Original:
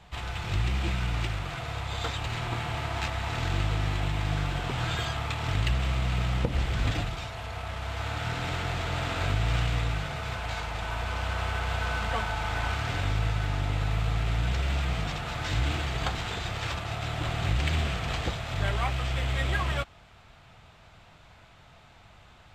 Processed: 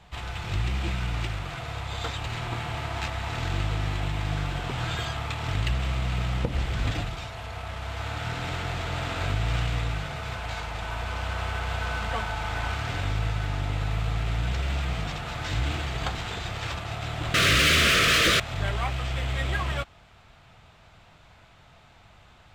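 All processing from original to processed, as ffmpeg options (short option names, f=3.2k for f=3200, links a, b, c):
-filter_complex "[0:a]asettb=1/sr,asplit=3[a][b][c];[a]atrim=end=17.344[d];[b]atrim=start=17.34:end=18.4,asetpts=PTS-STARTPTS,afade=t=in:d=0.004:c=qsin,afade=t=out:st=1.056:d=0.004:c=qsin,asplit=2[e][f];[f]highpass=f=720:p=1,volume=36dB,asoftclip=type=tanh:threshold=-12dB[g];[e][g]amix=inputs=2:normalize=0,lowpass=f=5.8k:p=1,volume=-6dB,asuperstop=centerf=840:order=4:qfactor=1.3[h];[c]atrim=start=18.396[i];[d][h]acrossfade=d=0.004:c1=hsin:c2=qsin[j];[j][i]acrossfade=d=0.004:c1=qsin:c2=hsin"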